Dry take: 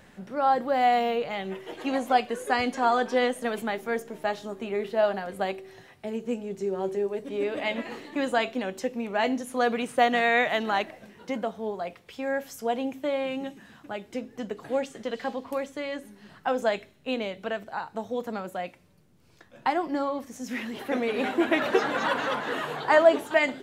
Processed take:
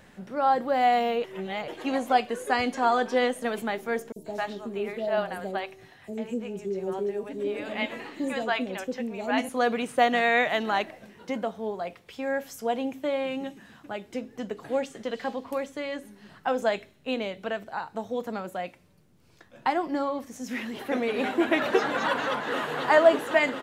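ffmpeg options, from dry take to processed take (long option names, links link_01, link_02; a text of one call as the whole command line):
ffmpeg -i in.wav -filter_complex "[0:a]asettb=1/sr,asplit=3[link_01][link_02][link_03];[link_01]atrim=end=4.124[link_04];[link_02]atrim=start=4.12:end=9.49,asetpts=PTS-STARTPTS,afade=type=in:duration=0.004:curve=qsin,afade=type=out:start_time=5.366:duration=0.004:curve=qsin,acrossover=split=570|5500[link_05][link_06][link_07];[link_05]adelay=40[link_08];[link_06]adelay=140[link_09];[link_08][link_09][link_07]amix=inputs=3:normalize=0,atrim=end_sample=236817[link_10];[link_03]atrim=start=9.486[link_11];[link_04][link_10]acrossfade=duration=0.004:curve1=hsin:curve2=qsin[link_12];[link_12][link_11]acrossfade=duration=0.004:curve1=qsin:curve2=hsin,asplit=2[link_13][link_14];[link_14]afade=type=in:start_time=22.27:duration=0.01,afade=type=out:start_time=22.74:duration=0.01,aecho=0:1:250|500|750|1000|1250|1500|1750|2000|2250|2500|2750|3000:0.530884|0.451252|0.383564|0.326029|0.277125|0.235556|0.200223|0.170189|0.144661|0.122962|0.104518|0.0888399[link_15];[link_13][link_15]amix=inputs=2:normalize=0,asplit=3[link_16][link_17][link_18];[link_16]atrim=end=1.242[link_19];[link_17]atrim=start=1.238:end=1.682,asetpts=PTS-STARTPTS,areverse[link_20];[link_18]atrim=start=1.678[link_21];[link_19][link_20]acrossfade=duration=0.004:curve1=hsin:curve2=hsin[link_22];[link_22][link_21]acrossfade=duration=0.004:curve1=hsin:curve2=hsin" out.wav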